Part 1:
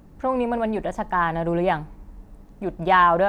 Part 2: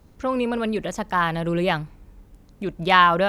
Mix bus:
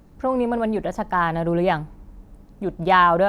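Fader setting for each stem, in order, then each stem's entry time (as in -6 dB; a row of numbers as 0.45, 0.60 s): -2.0, -6.5 dB; 0.00, 0.00 s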